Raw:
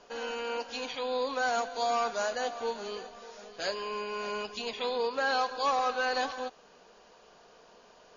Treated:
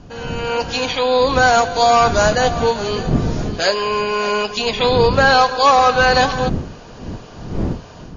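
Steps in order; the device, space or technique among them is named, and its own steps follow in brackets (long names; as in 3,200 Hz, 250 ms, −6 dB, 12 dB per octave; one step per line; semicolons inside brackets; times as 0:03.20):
smartphone video outdoors (wind on the microphone 210 Hz −41 dBFS; automatic gain control gain up to 11 dB; level +5.5 dB; AAC 96 kbit/s 22,050 Hz)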